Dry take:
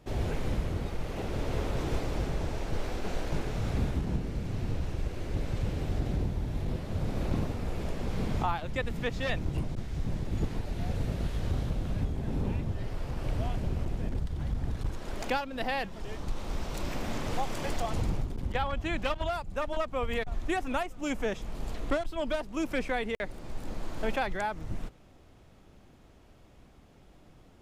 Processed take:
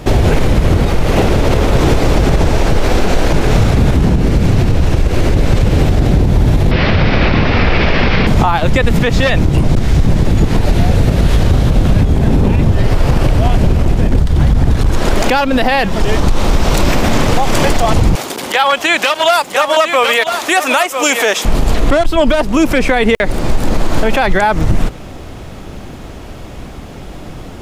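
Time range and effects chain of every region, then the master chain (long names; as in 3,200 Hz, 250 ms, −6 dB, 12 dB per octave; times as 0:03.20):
0:06.71–0:08.27: Chebyshev low-pass filter 5,200 Hz, order 4 + parametric band 2,200 Hz +12 dB 1.9 octaves
0:18.15–0:21.45: high-pass filter 390 Hz + spectral tilt +2.5 dB per octave + single-tap delay 996 ms −12 dB
whole clip: downward compressor, threshold −31 dBFS; boost into a limiter +28.5 dB; level −1 dB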